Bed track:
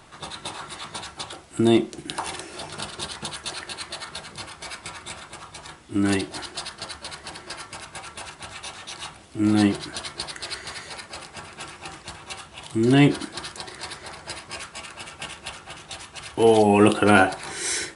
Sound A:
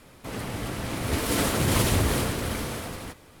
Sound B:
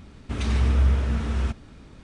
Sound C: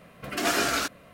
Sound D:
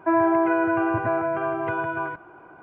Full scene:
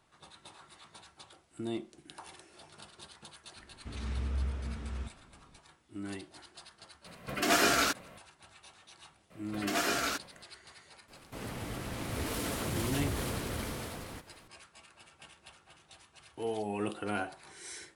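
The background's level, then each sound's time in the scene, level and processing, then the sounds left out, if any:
bed track -19 dB
3.56 s: add B -14 dB
7.05 s: add C -1 dB
9.30 s: add C -6 dB
11.08 s: add A -7.5 dB + peak limiter -17.5 dBFS
not used: D

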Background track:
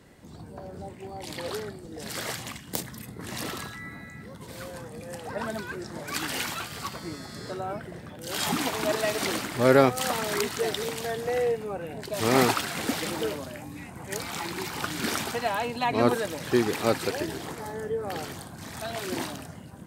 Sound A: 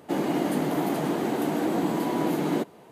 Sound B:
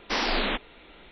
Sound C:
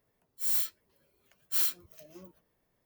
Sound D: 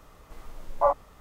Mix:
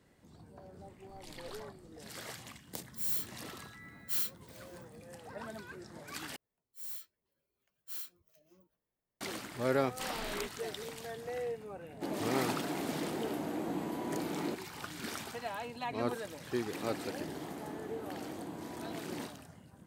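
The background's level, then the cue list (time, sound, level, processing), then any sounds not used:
background track -12 dB
0.79 s: add D -17.5 dB + compression, threshold -32 dBFS
2.57 s: add C -5.5 dB
6.36 s: replace with C -14.5 dB
9.90 s: add B -16.5 dB
11.92 s: add A -11.5 dB
16.64 s: add A -18 dB

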